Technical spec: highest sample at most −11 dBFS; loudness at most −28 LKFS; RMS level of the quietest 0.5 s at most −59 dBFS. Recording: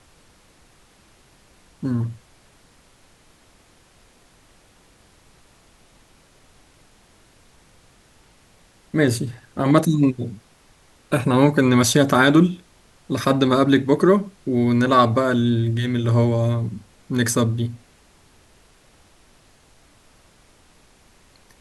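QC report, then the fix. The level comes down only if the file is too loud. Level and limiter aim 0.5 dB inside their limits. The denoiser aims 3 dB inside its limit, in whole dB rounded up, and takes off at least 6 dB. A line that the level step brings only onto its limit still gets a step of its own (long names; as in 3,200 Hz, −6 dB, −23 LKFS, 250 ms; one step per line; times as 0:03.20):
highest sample −3.0 dBFS: out of spec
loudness −19.5 LKFS: out of spec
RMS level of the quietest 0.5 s −55 dBFS: out of spec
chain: level −9 dB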